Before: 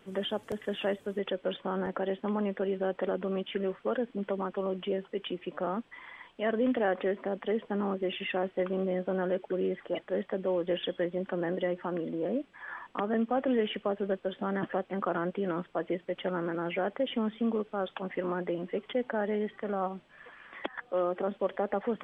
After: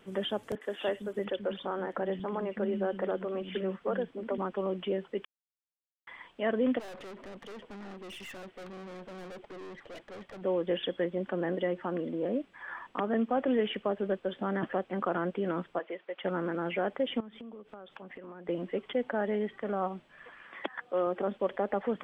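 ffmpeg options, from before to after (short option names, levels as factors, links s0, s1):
-filter_complex "[0:a]asettb=1/sr,asplit=3[s0][s1][s2];[s0]atrim=end=0.554[s3];[s1]atrim=start=0.55:end=4.38,asetpts=PTS-STARTPTS,afade=t=in:d=0.004:c=qsin,afade=t=out:st=3.826:d=0.004:c=qsin,acrossover=split=250|2800[s4][s5][s6];[s6]adelay=60[s7];[s4]adelay=330[s8];[s8][s5][s7]amix=inputs=3:normalize=0,atrim=end_sample=168903[s9];[s2]atrim=start=4.376[s10];[s3][s9]acrossfade=d=0.004:c1=hsin:c2=qsin[s11];[s11][s10]acrossfade=d=0.004:c1=qsin:c2=hsin,asplit=3[s12][s13][s14];[s12]afade=t=out:st=6.78:d=0.02[s15];[s13]aeval=exprs='(tanh(141*val(0)+0.35)-tanh(0.35))/141':c=same,afade=t=in:st=6.78:d=0.02,afade=t=out:st=10.41:d=0.02[s16];[s14]afade=t=in:st=10.41:d=0.02[s17];[s15][s16][s17]amix=inputs=3:normalize=0,asplit=3[s18][s19][s20];[s18]afade=t=out:st=15.78:d=0.02[s21];[s19]highpass=580,lowpass=3300,afade=t=in:st=15.78:d=0.02,afade=t=out:st=16.23:d=0.02[s22];[s20]afade=t=in:st=16.23:d=0.02[s23];[s21][s22][s23]amix=inputs=3:normalize=0,asettb=1/sr,asplit=3[s24][s25][s26];[s24]atrim=end=17.204[s27];[s25]atrim=start=17.2:end=18.49,asetpts=PTS-STARTPTS,afade=t=in:d=0.004:c=qsin,afade=t=out:st=1.286:d=0.004:c=qsin,acompressor=threshold=0.00794:ratio=16:attack=3.2:release=140:knee=1:detection=peak[s28];[s26]atrim=start=18.486[s29];[s27][s28]acrossfade=d=0.004:c1=hsin:c2=qsin[s30];[s30][s29]acrossfade=d=0.004:c1=qsin:c2=hsin,asettb=1/sr,asplit=3[s31][s32][s33];[s31]atrim=end=20.434[s34];[s32]atrim=start=20.43:end=21.07,asetpts=PTS-STARTPTS,afade=t=in:d=0.004:c=qsin,afade=t=out:st=0.636:d=0.004:c=qsin,highpass=f=110:p=1[s35];[s33]atrim=start=21.066[s36];[s34][s35]acrossfade=d=0.004:c1=hsin:c2=qsin[s37];[s37][s36]acrossfade=d=0.004:c1=qsin:c2=hsin,asplit=3[s38][s39][s40];[s38]atrim=end=5.25,asetpts=PTS-STARTPTS,afade=t=out:st=5.246:d=0.004:c=hsin[s41];[s39]atrim=start=5.25:end=6.07,asetpts=PTS-STARTPTS,volume=0[s42];[s40]atrim=start=6.07,asetpts=PTS-STARTPTS,afade=t=in:d=0.004:c=hsin[s43];[s41][s42][s43]concat=n=3:v=0:a=1"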